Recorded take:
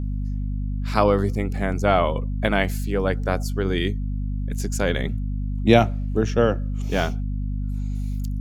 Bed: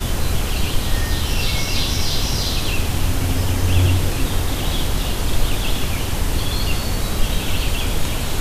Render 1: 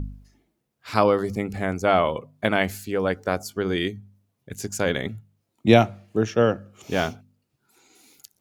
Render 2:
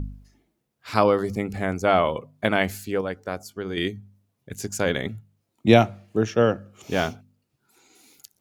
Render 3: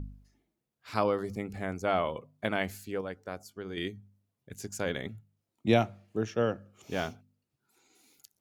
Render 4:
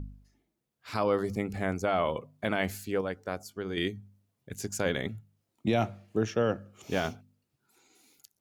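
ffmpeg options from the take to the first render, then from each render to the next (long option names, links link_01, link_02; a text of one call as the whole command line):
ffmpeg -i in.wav -af "bandreject=frequency=50:width_type=h:width=4,bandreject=frequency=100:width_type=h:width=4,bandreject=frequency=150:width_type=h:width=4,bandreject=frequency=200:width_type=h:width=4,bandreject=frequency=250:width_type=h:width=4" out.wav
ffmpeg -i in.wav -filter_complex "[0:a]asplit=3[link_01][link_02][link_03];[link_01]atrim=end=3.012[link_04];[link_02]atrim=start=3.008:end=3.772,asetpts=PTS-STARTPTS,volume=-6dB[link_05];[link_03]atrim=start=3.768[link_06];[link_04][link_05]acrossfade=duration=0.004:curve1=hsin:curve2=hsin[link_07];[link_07][link_06]acrossfade=duration=0.004:curve1=hsin:curve2=hsin" out.wav
ffmpeg -i in.wav -af "volume=-9dB" out.wav
ffmpeg -i in.wav -af "dynaudnorm=framelen=250:gausssize=7:maxgain=4.5dB,alimiter=limit=-16.5dB:level=0:latency=1:release=17" out.wav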